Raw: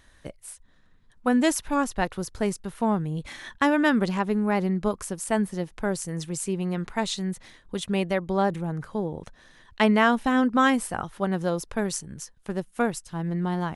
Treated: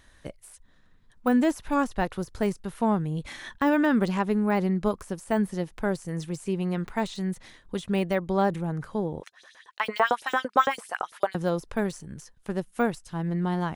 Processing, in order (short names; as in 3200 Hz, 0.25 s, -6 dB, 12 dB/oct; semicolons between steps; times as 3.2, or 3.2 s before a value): de-esser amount 95%; 9.21–11.35 LFO high-pass saw up 8.9 Hz 420–6500 Hz